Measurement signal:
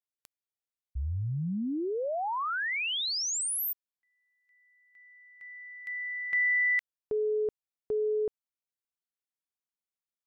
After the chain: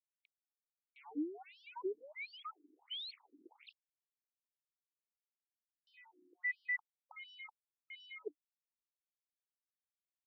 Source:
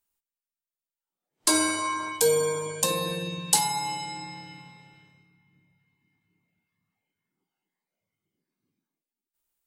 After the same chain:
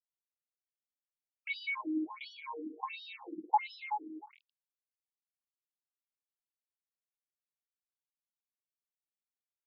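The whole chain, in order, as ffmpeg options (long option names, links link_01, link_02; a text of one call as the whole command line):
ffmpeg -i in.wav -filter_complex "[0:a]aeval=exprs='val(0)*gte(abs(val(0)),0.0224)':channel_layout=same,asplit=3[link_01][link_02][link_03];[link_01]bandpass=frequency=300:width_type=q:width=8,volume=0dB[link_04];[link_02]bandpass=frequency=870:width_type=q:width=8,volume=-6dB[link_05];[link_03]bandpass=frequency=2240:width_type=q:width=8,volume=-9dB[link_06];[link_04][link_05][link_06]amix=inputs=3:normalize=0,afftfilt=real='re*between(b*sr/1024,290*pow(4100/290,0.5+0.5*sin(2*PI*1.4*pts/sr))/1.41,290*pow(4100/290,0.5+0.5*sin(2*PI*1.4*pts/sr))*1.41)':imag='im*between(b*sr/1024,290*pow(4100/290,0.5+0.5*sin(2*PI*1.4*pts/sr))/1.41,290*pow(4100/290,0.5+0.5*sin(2*PI*1.4*pts/sr))*1.41)':win_size=1024:overlap=0.75,volume=11dB" out.wav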